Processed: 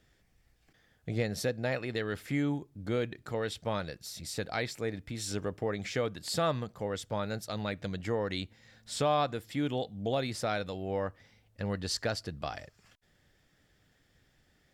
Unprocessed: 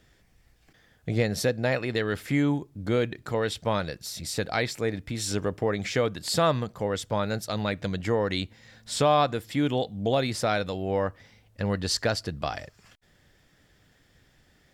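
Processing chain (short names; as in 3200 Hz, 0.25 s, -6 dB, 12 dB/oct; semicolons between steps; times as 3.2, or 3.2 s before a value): notch 1000 Hz, Q 25; gain -6.5 dB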